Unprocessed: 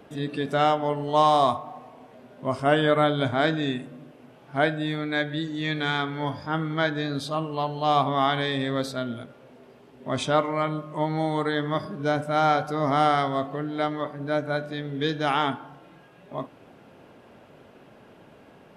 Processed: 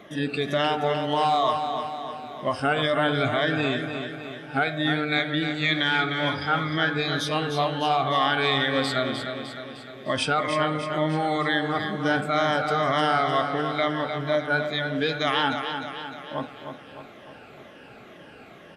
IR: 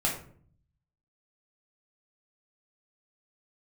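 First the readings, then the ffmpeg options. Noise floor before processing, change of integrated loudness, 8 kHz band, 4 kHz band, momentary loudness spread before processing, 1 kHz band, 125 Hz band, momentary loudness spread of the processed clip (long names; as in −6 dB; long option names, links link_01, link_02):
−52 dBFS, +0.5 dB, +2.5 dB, +5.0 dB, 12 LU, 0.0 dB, −0.5 dB, 12 LU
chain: -af "afftfilt=real='re*pow(10,12/40*sin(2*PI*(1.2*log(max(b,1)*sr/1024/100)/log(2)-(-2.1)*(pts-256)/sr)))':imag='im*pow(10,12/40*sin(2*PI*(1.2*log(max(b,1)*sr/1024/100)/log(2)-(-2.1)*(pts-256)/sr)))':win_size=1024:overlap=0.75,asuperstop=centerf=970:order=4:qfactor=7.5,alimiter=limit=-17.5dB:level=0:latency=1:release=154,equalizer=frequency=2300:width_type=o:width=2.4:gain=7.5,aecho=1:1:304|608|912|1216|1520|1824|2128:0.422|0.228|0.123|0.0664|0.0359|0.0194|0.0105"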